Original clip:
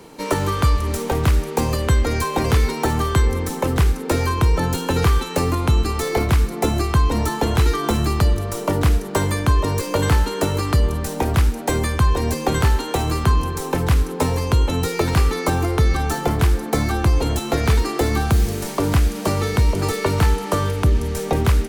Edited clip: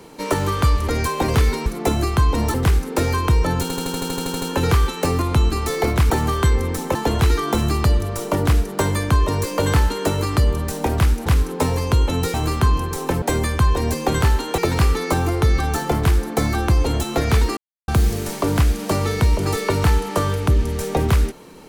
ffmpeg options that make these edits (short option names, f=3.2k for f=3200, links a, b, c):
-filter_complex "[0:a]asplit=22[a][b][c][d][e][f][g][h][i][j][k][l][m][n][o][p][q][r][s][t][u][v];[a]atrim=end=0.882[w];[b]atrim=start=2.038:end=2.822[x];[c]atrim=start=6.428:end=7.312[y];[d]atrim=start=3.668:end=4.832[z];[e]atrim=start=4.748:end=4.832[aa];[f]atrim=start=4.748:end=4.832[ab];[g]atrim=start=4.748:end=4.832[ac];[h]atrim=start=4.748:end=4.832[ad];[i]atrim=start=4.748:end=4.832[ae];[j]atrim=start=4.748:end=4.832[af];[k]atrim=start=4.748:end=4.832[ag];[l]atrim=start=4.748:end=4.832[ah];[m]atrim=start=4.748:end=4.832[ai];[n]atrim=start=4.748:end=6.432[aj];[o]atrim=start=2.818:end=3.672[ak];[p]atrim=start=7.308:end=11.622[al];[q]atrim=start=13.858:end=14.942[am];[r]atrim=start=12.978:end=13.862[an];[s]atrim=start=11.618:end=12.982[ao];[t]atrim=start=14.938:end=17.93,asetpts=PTS-STARTPTS,afade=t=out:st=2.988:d=0.004:c=hsin[ap];[u]atrim=start=17.93:end=18.24,asetpts=PTS-STARTPTS,volume=0[aq];[v]atrim=start=18.24,asetpts=PTS-STARTPTS,afade=t=in:d=0.004:c=hsin[ar];[w][x]acrossfade=d=0.004:c1=hsin:c2=hsin[as];[as][y]acrossfade=d=0.004:c1=hsin:c2=hsin[at];[at][z]acrossfade=d=0.004:c1=hsin:c2=hsin[au];[au][aa]acrossfade=d=0.004:c1=hsin:c2=hsin[av];[av][ab]acrossfade=d=0.004:c1=hsin:c2=hsin[aw];[aw][ac]acrossfade=d=0.004:c1=hsin:c2=hsin[ax];[ax][ad]acrossfade=d=0.004:c1=hsin:c2=hsin[ay];[ay][ae]acrossfade=d=0.004:c1=hsin:c2=hsin[az];[az][af]acrossfade=d=0.004:c1=hsin:c2=hsin[ba];[ba][ag]acrossfade=d=0.004:c1=hsin:c2=hsin[bb];[bb][ah]acrossfade=d=0.004:c1=hsin:c2=hsin[bc];[bc][ai]acrossfade=d=0.004:c1=hsin:c2=hsin[bd];[bd][aj]acrossfade=d=0.004:c1=hsin:c2=hsin[be];[be][ak]acrossfade=d=0.004:c1=hsin:c2=hsin[bf];[bf][al]acrossfade=d=0.004:c1=hsin:c2=hsin[bg];[bg][am]acrossfade=d=0.004:c1=hsin:c2=hsin[bh];[bh][an]acrossfade=d=0.004:c1=hsin:c2=hsin[bi];[bi][ao]acrossfade=d=0.004:c1=hsin:c2=hsin[bj];[ap][aq][ar]concat=n=3:v=0:a=1[bk];[bj][bk]acrossfade=d=0.004:c1=hsin:c2=hsin"